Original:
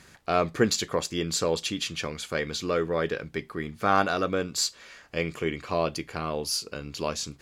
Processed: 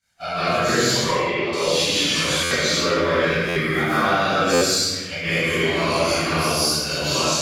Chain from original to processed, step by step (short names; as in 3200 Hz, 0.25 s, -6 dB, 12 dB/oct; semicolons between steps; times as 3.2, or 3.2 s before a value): phase scrambler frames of 0.2 s; tilt shelf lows -6 dB, about 1400 Hz; expander -38 dBFS; compressor, threshold -32 dBFS, peak gain reduction 12.5 dB; 0.95–1.53 speaker cabinet 390–2400 Hz, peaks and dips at 390 Hz +9 dB, 660 Hz +3 dB, 1000 Hz +6 dB, 1500 Hz -5 dB, 2300 Hz +9 dB; reverb RT60 1.4 s, pre-delay 0.128 s, DRR -10 dB; stuck buffer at 2.43/3.48/4.53, samples 512, times 6; gain +3 dB